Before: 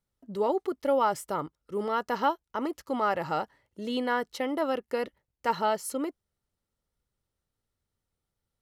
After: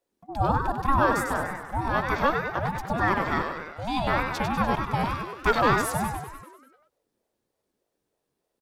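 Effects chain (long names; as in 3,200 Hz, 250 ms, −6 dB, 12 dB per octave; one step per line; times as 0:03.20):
echo with shifted repeats 98 ms, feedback 60%, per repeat +76 Hz, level −6 dB
0:05.03–0:05.82: leveller curve on the samples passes 1
ring modulator whose carrier an LFO sweeps 420 Hz, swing 30%, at 3.3 Hz
level +5.5 dB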